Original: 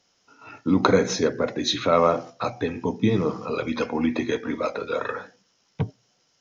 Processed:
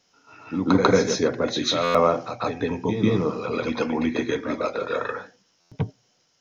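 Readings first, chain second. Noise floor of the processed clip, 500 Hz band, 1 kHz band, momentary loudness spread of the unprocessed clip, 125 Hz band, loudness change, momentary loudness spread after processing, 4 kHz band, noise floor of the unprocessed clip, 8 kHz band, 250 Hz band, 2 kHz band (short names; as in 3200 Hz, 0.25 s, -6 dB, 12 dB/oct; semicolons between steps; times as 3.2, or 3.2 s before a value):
-66 dBFS, +0.5 dB, +0.5 dB, 12 LU, +0.5 dB, +0.5 dB, 12 LU, +1.0 dB, -67 dBFS, n/a, +0.5 dB, +1.0 dB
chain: reverse echo 0.144 s -6 dB; stuck buffer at 1.83/5.6, samples 512, times 9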